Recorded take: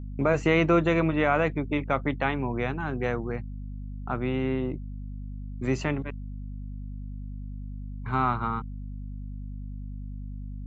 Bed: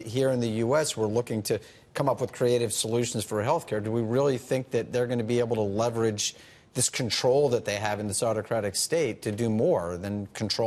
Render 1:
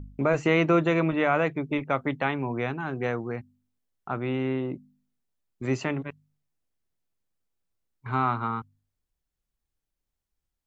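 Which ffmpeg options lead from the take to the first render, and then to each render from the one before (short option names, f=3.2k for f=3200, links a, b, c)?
-af "bandreject=f=50:t=h:w=4,bandreject=f=100:t=h:w=4,bandreject=f=150:t=h:w=4,bandreject=f=200:t=h:w=4,bandreject=f=250:t=h:w=4"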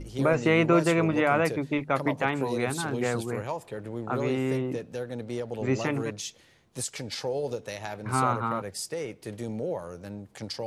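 -filter_complex "[1:a]volume=-8dB[a];[0:a][a]amix=inputs=2:normalize=0"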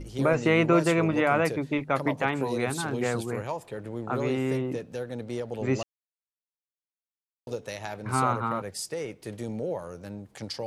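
-filter_complex "[0:a]asplit=3[a][b][c];[a]atrim=end=5.83,asetpts=PTS-STARTPTS,afade=t=out:st=5.826:d=0.004:c=hsin[d];[b]atrim=start=5.83:end=7.47,asetpts=PTS-STARTPTS,volume=0[e];[c]atrim=start=7.47,asetpts=PTS-STARTPTS,afade=t=in:d=0.004:c=hsin[f];[d][e][f]concat=n=3:v=0:a=1"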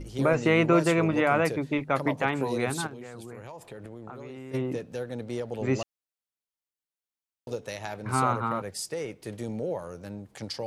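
-filter_complex "[0:a]asplit=3[a][b][c];[a]afade=t=out:st=2.86:d=0.02[d];[b]acompressor=threshold=-37dB:ratio=16:attack=3.2:release=140:knee=1:detection=peak,afade=t=in:st=2.86:d=0.02,afade=t=out:st=4.53:d=0.02[e];[c]afade=t=in:st=4.53:d=0.02[f];[d][e][f]amix=inputs=3:normalize=0"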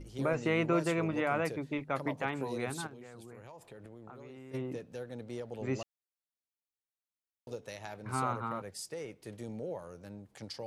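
-af "volume=-8dB"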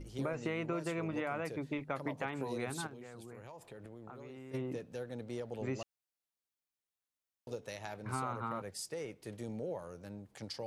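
-af "acompressor=threshold=-33dB:ratio=6"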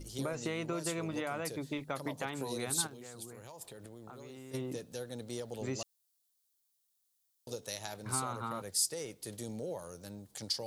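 -af "aexciter=amount=3.4:drive=6.2:freq=3.4k"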